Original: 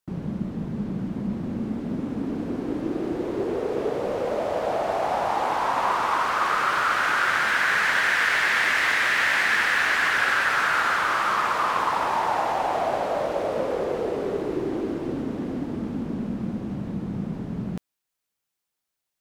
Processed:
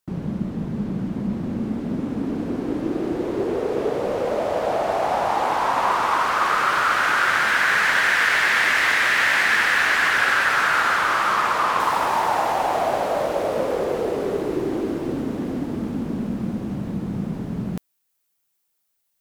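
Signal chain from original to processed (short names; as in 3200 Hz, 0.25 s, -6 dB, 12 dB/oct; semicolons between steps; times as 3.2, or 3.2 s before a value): high shelf 9200 Hz +2.5 dB, from 11.8 s +11 dB; gain +3 dB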